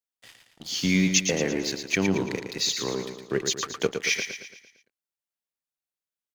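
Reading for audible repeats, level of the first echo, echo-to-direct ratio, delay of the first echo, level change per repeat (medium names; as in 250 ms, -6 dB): 5, -7.0 dB, -6.0 dB, 113 ms, -6.0 dB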